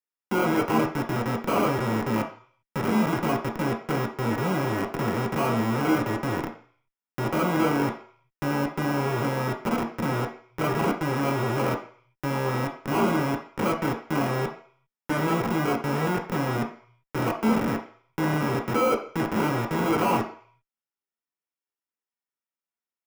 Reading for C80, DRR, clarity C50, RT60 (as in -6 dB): 14.0 dB, 2.0 dB, 8.5 dB, 0.50 s